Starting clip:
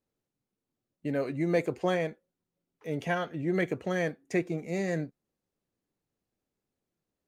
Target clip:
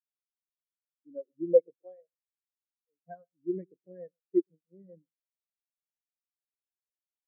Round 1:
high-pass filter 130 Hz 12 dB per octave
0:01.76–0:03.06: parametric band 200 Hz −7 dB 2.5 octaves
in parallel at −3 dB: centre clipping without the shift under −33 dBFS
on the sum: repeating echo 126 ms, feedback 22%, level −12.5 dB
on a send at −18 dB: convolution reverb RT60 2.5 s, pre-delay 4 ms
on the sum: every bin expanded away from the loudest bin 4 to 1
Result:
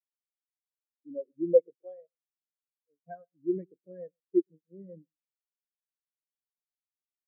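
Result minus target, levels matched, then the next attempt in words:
centre clipping without the shift: distortion −9 dB
high-pass filter 130 Hz 12 dB per octave
0:01.76–0:03.06: parametric band 200 Hz −7 dB 2.5 octaves
in parallel at −3 dB: centre clipping without the shift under −26 dBFS
on the sum: repeating echo 126 ms, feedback 22%, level −12.5 dB
on a send at −18 dB: convolution reverb RT60 2.5 s, pre-delay 4 ms
on the sum: every bin expanded away from the loudest bin 4 to 1

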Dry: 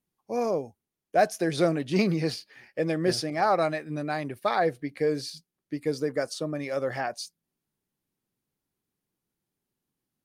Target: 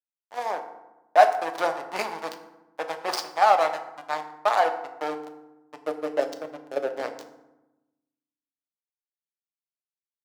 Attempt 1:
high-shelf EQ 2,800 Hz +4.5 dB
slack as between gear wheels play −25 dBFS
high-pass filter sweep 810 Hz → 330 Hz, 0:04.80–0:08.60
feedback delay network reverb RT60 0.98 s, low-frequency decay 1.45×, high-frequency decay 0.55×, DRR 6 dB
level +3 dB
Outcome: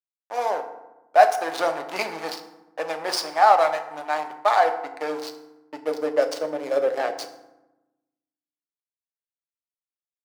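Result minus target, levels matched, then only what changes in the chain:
slack as between gear wheels: distortion −8 dB
change: slack as between gear wheels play −18 dBFS

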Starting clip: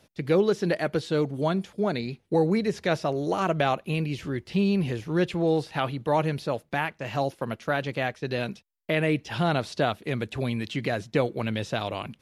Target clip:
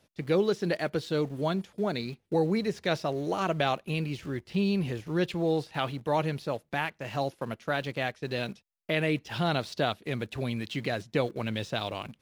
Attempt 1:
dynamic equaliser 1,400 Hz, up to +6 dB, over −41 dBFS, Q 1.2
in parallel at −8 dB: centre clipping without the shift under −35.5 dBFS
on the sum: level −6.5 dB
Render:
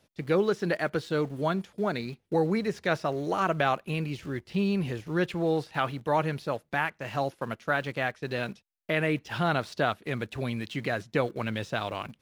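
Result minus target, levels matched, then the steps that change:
4,000 Hz band −3.5 dB
change: dynamic equaliser 4,100 Hz, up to +6 dB, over −41 dBFS, Q 1.2

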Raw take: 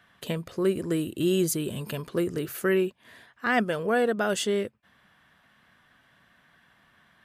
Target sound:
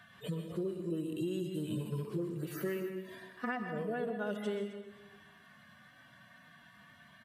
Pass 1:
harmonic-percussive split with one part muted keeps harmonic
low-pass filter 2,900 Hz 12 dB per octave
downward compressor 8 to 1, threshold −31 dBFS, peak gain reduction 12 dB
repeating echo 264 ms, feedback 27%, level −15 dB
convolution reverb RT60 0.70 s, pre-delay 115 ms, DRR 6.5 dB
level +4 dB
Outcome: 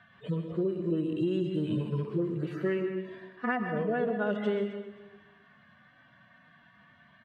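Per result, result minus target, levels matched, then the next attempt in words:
downward compressor: peak gain reduction −7 dB; 4,000 Hz band −4.5 dB
harmonic-percussive split with one part muted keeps harmonic
low-pass filter 2,900 Hz 12 dB per octave
downward compressor 8 to 1, threshold −39 dBFS, peak gain reduction 19 dB
repeating echo 264 ms, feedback 27%, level −15 dB
convolution reverb RT60 0.70 s, pre-delay 115 ms, DRR 6.5 dB
level +4 dB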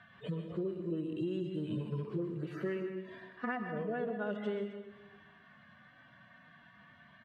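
4,000 Hz band −3.5 dB
harmonic-percussive split with one part muted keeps harmonic
downward compressor 8 to 1, threshold −39 dBFS, peak gain reduction 19 dB
repeating echo 264 ms, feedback 27%, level −15 dB
convolution reverb RT60 0.70 s, pre-delay 115 ms, DRR 6.5 dB
level +4 dB

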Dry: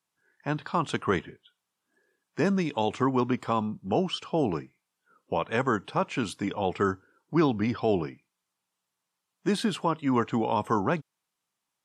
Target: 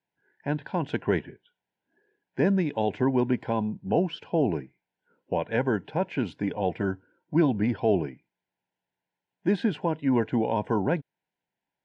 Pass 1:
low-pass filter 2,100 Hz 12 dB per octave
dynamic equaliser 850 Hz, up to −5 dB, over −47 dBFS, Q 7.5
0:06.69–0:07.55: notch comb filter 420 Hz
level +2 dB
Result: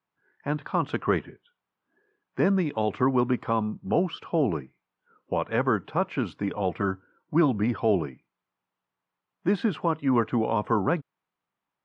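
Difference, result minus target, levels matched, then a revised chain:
1,000 Hz band +3.0 dB
low-pass filter 2,100 Hz 12 dB per octave
dynamic equaliser 850 Hz, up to −5 dB, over −47 dBFS, Q 7.5
Butterworth band-reject 1,200 Hz, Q 2.4
0:06.69–0:07.55: notch comb filter 420 Hz
level +2 dB

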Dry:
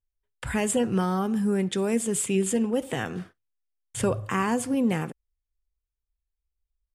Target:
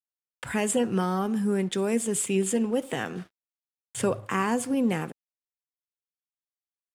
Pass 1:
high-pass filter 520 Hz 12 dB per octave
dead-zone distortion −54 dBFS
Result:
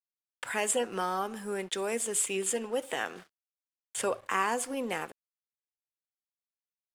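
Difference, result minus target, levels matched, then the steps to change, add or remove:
125 Hz band −12.0 dB
change: high-pass filter 150 Hz 12 dB per octave

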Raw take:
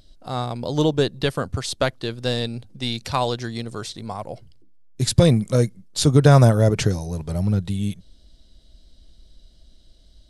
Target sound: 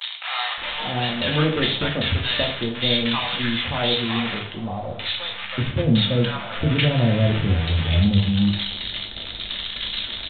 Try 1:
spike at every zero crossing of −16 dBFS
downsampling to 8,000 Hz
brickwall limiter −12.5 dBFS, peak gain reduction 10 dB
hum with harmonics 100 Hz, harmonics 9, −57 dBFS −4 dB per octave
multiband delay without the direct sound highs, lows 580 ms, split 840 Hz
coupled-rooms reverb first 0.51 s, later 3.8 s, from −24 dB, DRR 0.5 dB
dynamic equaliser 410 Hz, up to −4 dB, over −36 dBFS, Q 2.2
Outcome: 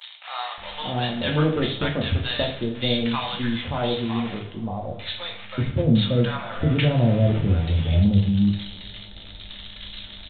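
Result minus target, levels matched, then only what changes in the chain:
spike at every zero crossing: distortion −11 dB
change: spike at every zero crossing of −5 dBFS

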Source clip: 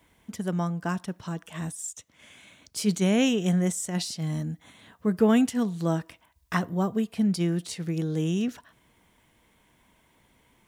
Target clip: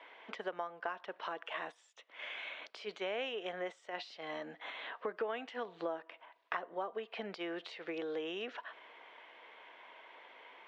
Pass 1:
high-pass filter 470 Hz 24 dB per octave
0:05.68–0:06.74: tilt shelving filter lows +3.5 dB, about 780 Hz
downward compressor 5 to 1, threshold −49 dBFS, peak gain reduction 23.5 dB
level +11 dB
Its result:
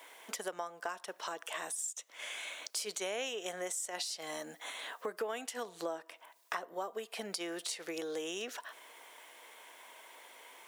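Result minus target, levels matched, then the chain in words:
4,000 Hz band +2.5 dB
high-pass filter 470 Hz 24 dB per octave
0:05.68–0:06.74: tilt shelving filter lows +3.5 dB, about 780 Hz
downward compressor 5 to 1, threshold −49 dBFS, peak gain reduction 23.5 dB
low-pass filter 3,200 Hz 24 dB per octave
level +11 dB

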